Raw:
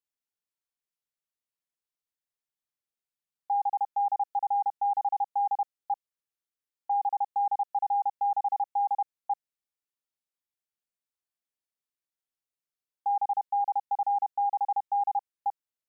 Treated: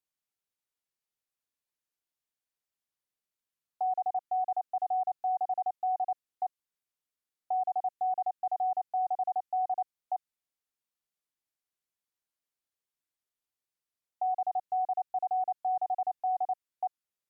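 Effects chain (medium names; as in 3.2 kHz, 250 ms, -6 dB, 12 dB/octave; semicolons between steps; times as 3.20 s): dynamic bell 680 Hz, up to -5 dB, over -41 dBFS, Q 2.3; speed mistake 48 kHz file played as 44.1 kHz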